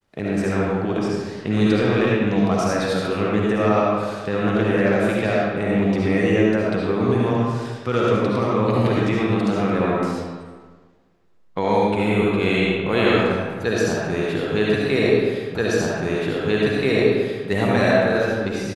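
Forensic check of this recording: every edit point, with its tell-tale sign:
15.55 s: repeat of the last 1.93 s

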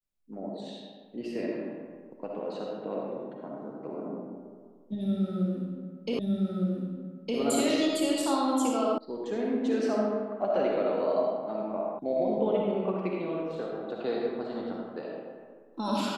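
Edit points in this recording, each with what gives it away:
6.19 s: repeat of the last 1.21 s
8.98 s: sound stops dead
11.99 s: sound stops dead

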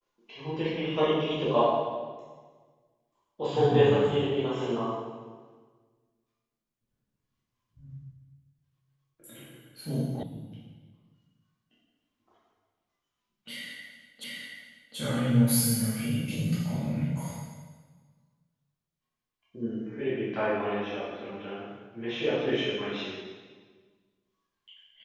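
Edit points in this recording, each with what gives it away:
10.23 s: sound stops dead
14.24 s: repeat of the last 0.73 s

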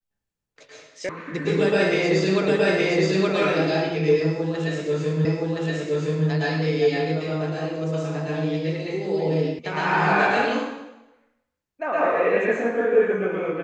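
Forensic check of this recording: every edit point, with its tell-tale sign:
1.09 s: sound stops dead
2.48 s: repeat of the last 0.87 s
5.25 s: repeat of the last 1.02 s
9.59 s: sound stops dead

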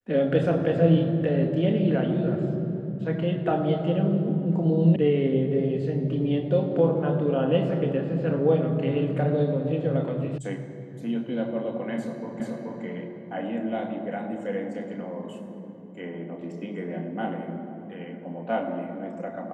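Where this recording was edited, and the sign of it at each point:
4.96 s: sound stops dead
10.38 s: sound stops dead
12.40 s: repeat of the last 0.43 s

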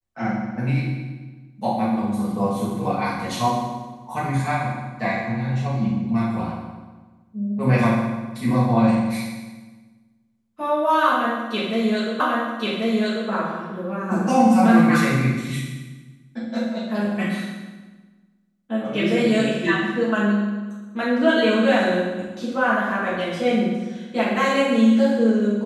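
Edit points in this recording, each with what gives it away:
12.20 s: repeat of the last 1.09 s

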